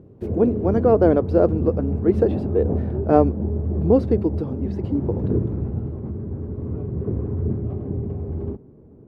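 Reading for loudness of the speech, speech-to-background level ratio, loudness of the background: -21.0 LUFS, 5.5 dB, -26.5 LUFS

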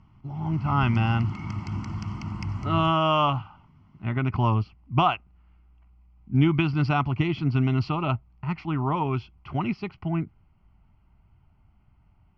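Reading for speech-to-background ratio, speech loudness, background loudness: 8.0 dB, -25.5 LUFS, -33.5 LUFS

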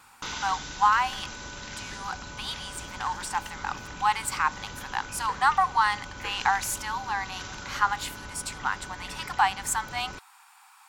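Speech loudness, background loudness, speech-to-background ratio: -28.5 LUFS, -39.5 LUFS, 11.0 dB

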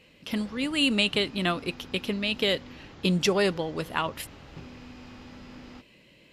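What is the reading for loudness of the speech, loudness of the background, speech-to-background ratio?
-27.0 LUFS, -47.0 LUFS, 20.0 dB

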